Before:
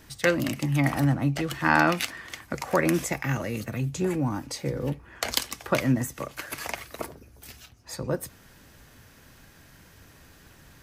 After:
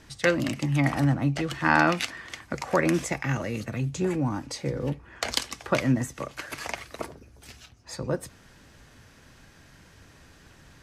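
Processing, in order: LPF 8600 Hz 12 dB/oct

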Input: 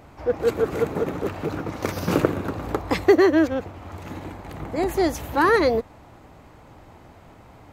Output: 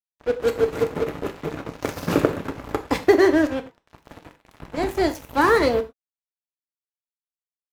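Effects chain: crossover distortion -31 dBFS; non-linear reverb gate 0.13 s falling, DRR 7.5 dB; gain +1.5 dB

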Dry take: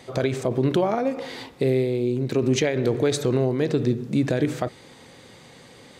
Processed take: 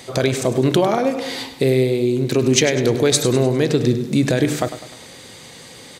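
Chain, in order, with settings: high shelf 3400 Hz +10.5 dB; feedback echo 0.101 s, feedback 46%, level -12 dB; gain +4.5 dB

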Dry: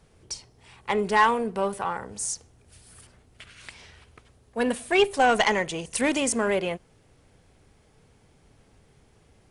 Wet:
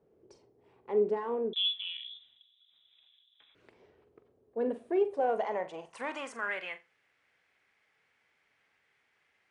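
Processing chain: limiter -16 dBFS, peak gain reduction 8 dB; band-pass sweep 400 Hz -> 2000 Hz, 4.99–6.73; on a send: flutter echo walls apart 7.4 m, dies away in 0.22 s; 1.53–3.55 on the sum: inverted band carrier 3800 Hz

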